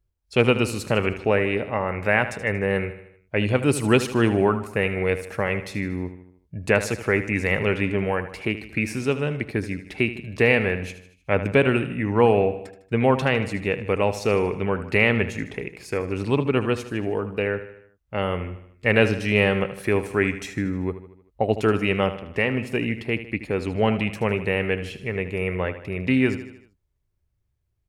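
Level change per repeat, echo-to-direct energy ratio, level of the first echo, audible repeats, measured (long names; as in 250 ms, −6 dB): −5.5 dB, −11.0 dB, −12.5 dB, 4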